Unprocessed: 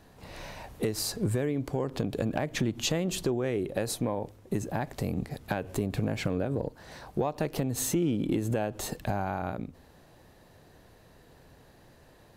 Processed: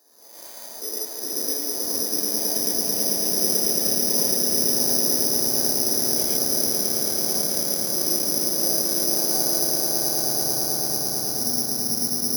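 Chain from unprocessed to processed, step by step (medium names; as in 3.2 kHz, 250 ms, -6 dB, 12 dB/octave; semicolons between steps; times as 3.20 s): high-pass 340 Hz 24 dB/octave; peak limiter -25.5 dBFS, peak gain reduction 9.5 dB; ever faster or slower copies 91 ms, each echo -6 st, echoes 3, each echo -6 dB; tape spacing loss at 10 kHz 37 dB; on a send: echo with a slow build-up 110 ms, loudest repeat 8, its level -6 dB; on the sum: gated-style reverb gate 160 ms rising, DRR -5 dB; careless resampling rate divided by 8×, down filtered, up zero stuff; trim -5.5 dB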